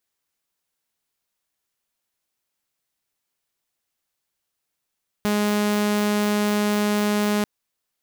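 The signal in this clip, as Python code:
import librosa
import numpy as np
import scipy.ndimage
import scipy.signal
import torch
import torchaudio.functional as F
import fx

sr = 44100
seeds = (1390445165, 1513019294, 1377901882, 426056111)

y = 10.0 ** (-16.5 / 20.0) * (2.0 * np.mod(208.0 * (np.arange(round(2.19 * sr)) / sr), 1.0) - 1.0)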